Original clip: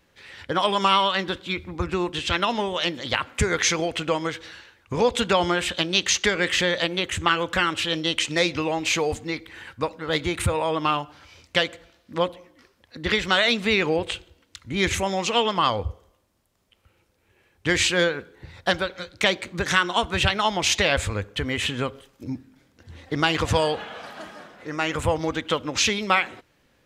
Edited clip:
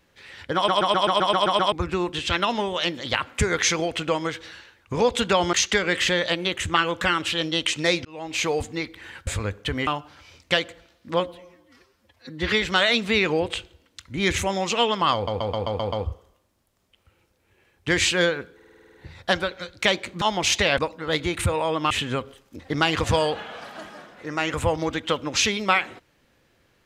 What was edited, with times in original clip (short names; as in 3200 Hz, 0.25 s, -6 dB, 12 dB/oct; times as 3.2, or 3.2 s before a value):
0.55 stutter in place 0.13 s, 9 plays
5.53–6.05 cut
8.57–9.03 fade in
9.79–10.91 swap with 20.98–21.58
12.24–13.19 stretch 1.5×
15.71 stutter 0.13 s, 7 plays
18.33 stutter 0.05 s, 9 plays
19.6–20.41 cut
22.27–23.01 cut